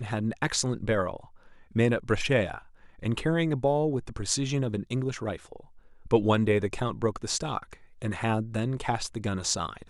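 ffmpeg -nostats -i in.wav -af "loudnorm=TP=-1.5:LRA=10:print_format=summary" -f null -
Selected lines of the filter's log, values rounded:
Input Integrated:    -28.9 LUFS
Input True Peak:      -8.3 dBTP
Input LRA:             2.4 LU
Input Threshold:     -39.3 LUFS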